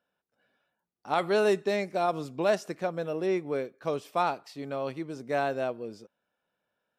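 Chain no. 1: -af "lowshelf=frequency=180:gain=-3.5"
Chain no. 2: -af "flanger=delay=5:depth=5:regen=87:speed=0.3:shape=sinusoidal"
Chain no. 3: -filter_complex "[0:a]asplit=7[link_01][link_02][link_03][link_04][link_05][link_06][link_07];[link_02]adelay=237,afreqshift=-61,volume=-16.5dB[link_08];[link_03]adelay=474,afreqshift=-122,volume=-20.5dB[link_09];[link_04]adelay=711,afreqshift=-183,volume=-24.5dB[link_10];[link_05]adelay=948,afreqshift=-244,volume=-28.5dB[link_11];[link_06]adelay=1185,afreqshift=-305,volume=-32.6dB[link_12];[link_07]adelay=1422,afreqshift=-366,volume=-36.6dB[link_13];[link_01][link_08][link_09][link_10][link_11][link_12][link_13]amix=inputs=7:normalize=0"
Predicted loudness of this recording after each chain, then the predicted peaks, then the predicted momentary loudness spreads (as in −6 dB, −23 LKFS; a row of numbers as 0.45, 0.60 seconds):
−30.5, −34.5, −30.0 LKFS; −14.5, −18.0, −14.0 dBFS; 10, 10, 12 LU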